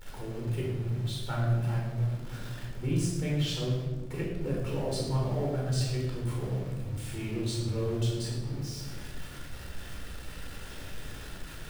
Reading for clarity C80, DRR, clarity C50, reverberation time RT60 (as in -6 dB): 3.5 dB, -3.5 dB, 1.0 dB, 1.4 s